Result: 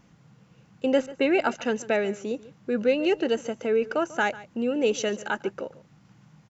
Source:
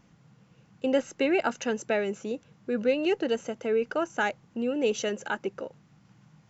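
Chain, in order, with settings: 1.06–1.65 low-pass opened by the level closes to 1100 Hz, open at -21.5 dBFS; echo 0.143 s -18.5 dB; gain +2.5 dB

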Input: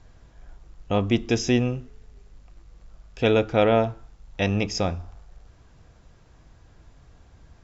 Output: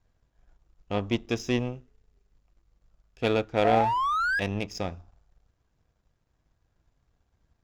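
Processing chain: painted sound rise, 3.64–4.4, 670–1700 Hz -19 dBFS; power-law curve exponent 1.4; gain -2.5 dB

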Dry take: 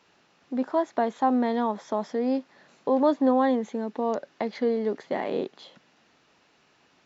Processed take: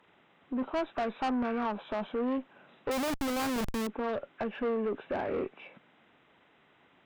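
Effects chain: nonlinear frequency compression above 1100 Hz 1.5:1; tube stage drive 27 dB, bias 0.2; 2.91–3.87 Schmitt trigger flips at -36.5 dBFS

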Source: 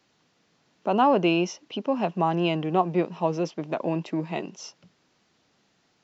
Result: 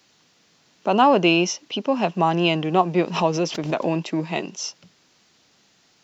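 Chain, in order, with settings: high shelf 2600 Hz +9.5 dB; 2.98–3.99 backwards sustainer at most 96 dB/s; gain +3.5 dB

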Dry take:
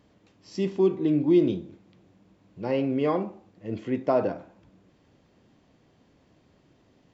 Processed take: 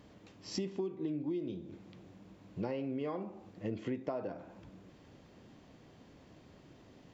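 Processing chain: compressor 20:1, threshold -37 dBFS, peak gain reduction 23 dB; gain +3.5 dB

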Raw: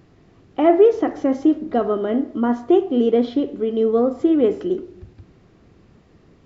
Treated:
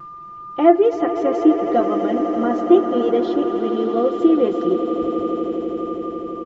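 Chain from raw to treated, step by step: reverb removal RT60 0.73 s; whine 1200 Hz -37 dBFS; vibrato 0.42 Hz 9.6 cents; comb 5.8 ms, depth 66%; on a send: swelling echo 83 ms, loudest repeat 8, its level -14.5 dB; on the sum: gain -1 dB

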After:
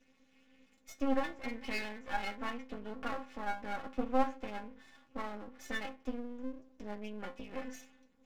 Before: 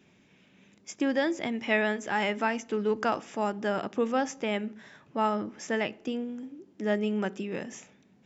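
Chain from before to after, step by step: treble ducked by the level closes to 1900 Hz, closed at -27.5 dBFS; metallic resonator 260 Hz, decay 0.26 s, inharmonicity 0.008; half-wave rectifier; gain +9.5 dB

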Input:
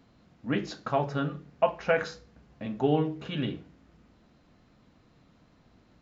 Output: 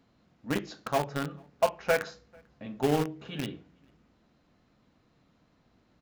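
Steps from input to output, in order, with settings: low shelf 140 Hz -3.5 dB; in parallel at -5 dB: bit-crush 4-bit; on the sum: outdoor echo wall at 76 m, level -30 dB; gain -4.5 dB

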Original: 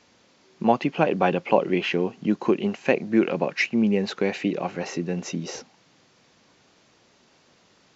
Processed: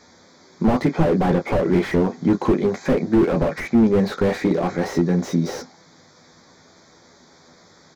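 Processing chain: Butterworth band-stop 2800 Hz, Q 2.2; early reflections 12 ms -5 dB, 32 ms -12.5 dB; slew limiter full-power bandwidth 33 Hz; gain +7.5 dB

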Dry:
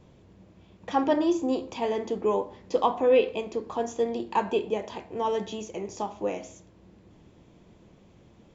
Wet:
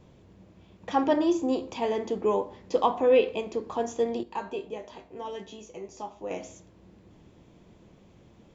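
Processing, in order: 4.23–6.31 resonator 55 Hz, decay 0.22 s, harmonics odd, mix 80%

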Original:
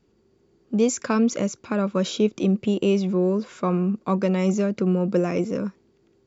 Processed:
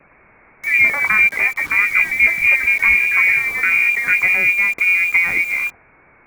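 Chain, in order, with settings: switching spikes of -23 dBFS; echoes that change speed 0.113 s, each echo +5 st, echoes 2, each echo -6 dB; inverted band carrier 2600 Hz; in parallel at +1.5 dB: bit-crush 6-bit; on the sum: gain -1 dB

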